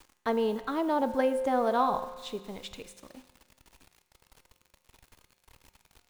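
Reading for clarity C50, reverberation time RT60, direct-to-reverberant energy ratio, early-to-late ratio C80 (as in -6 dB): 12.0 dB, 1.4 s, 10.0 dB, 13.5 dB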